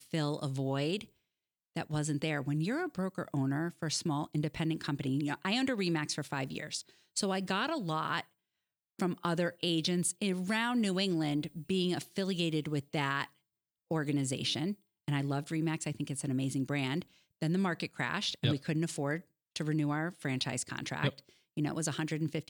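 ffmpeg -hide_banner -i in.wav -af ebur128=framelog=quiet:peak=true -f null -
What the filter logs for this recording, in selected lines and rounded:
Integrated loudness:
  I:         -34.0 LUFS
  Threshold: -44.2 LUFS
Loudness range:
  LRA:         3.0 LU
  Threshold: -54.2 LUFS
  LRA low:   -35.5 LUFS
  LRA high:  -32.5 LUFS
True peak:
  Peak:      -15.6 dBFS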